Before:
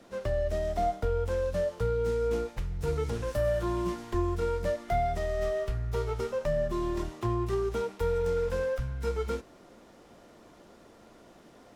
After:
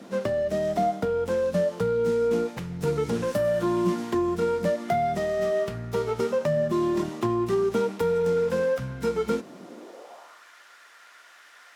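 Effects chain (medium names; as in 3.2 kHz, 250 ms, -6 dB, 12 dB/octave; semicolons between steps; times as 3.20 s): compression 2:1, threshold -31 dBFS, peak gain reduction 5 dB; high-pass sweep 190 Hz -> 1.6 kHz, 9.62–10.45 s; trim +7.5 dB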